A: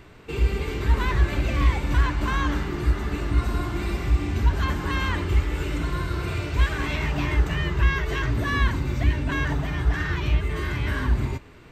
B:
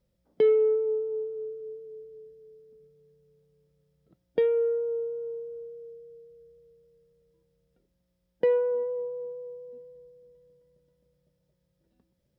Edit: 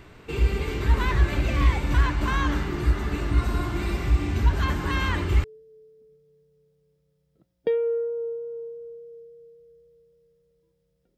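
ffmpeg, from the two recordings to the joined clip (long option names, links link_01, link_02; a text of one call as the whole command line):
ffmpeg -i cue0.wav -i cue1.wav -filter_complex "[0:a]apad=whole_dur=11.17,atrim=end=11.17,atrim=end=5.442[link_01];[1:a]atrim=start=2.148:end=7.88[link_02];[link_01][link_02]acrossfade=duration=0.004:curve1=hsin:curve2=hsin" out.wav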